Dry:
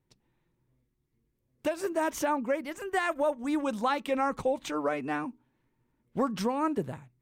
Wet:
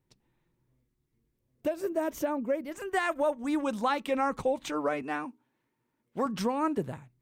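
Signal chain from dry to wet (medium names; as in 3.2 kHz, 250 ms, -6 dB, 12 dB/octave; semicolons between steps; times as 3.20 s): 1.61–2.72 s: time-frequency box 700–12000 Hz -7 dB; 5.02–6.26 s: high-pass 320 Hz 6 dB/octave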